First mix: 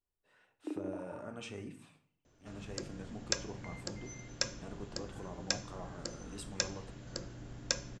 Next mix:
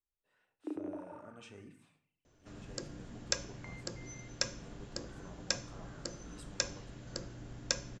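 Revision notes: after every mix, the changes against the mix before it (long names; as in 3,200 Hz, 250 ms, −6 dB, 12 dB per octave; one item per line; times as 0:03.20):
speech −8.0 dB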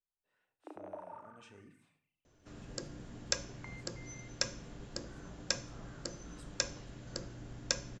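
speech −4.5 dB
first sound: add high-pass with resonance 720 Hz, resonance Q 1.7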